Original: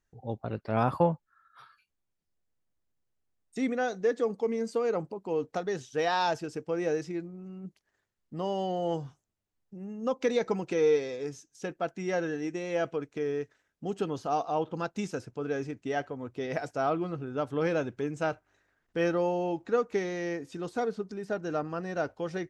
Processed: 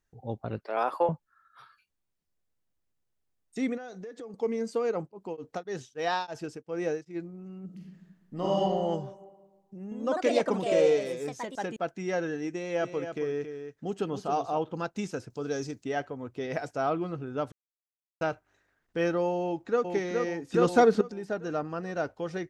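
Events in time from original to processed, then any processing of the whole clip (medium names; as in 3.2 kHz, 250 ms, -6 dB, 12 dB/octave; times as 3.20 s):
0.64–1.09 s: high-pass 370 Hz 24 dB/octave
3.77–4.34 s: compression 12:1, threshold -38 dBFS
4.91–7.15 s: tremolo of two beating tones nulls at 4.4 Hz -> 2.2 Hz
7.65–8.60 s: reverb throw, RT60 1.4 s, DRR -4.5 dB
9.83–12.03 s: ever faster or slower copies 84 ms, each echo +3 st, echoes 2
12.54–14.58 s: delay 274 ms -8.5 dB
15.30–15.84 s: resonant high shelf 3.4 kHz +9.5 dB, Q 1.5
17.52–18.21 s: mute
19.42–19.90 s: echo throw 420 ms, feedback 50%, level -4 dB
20.54–21.01 s: gain +10.5 dB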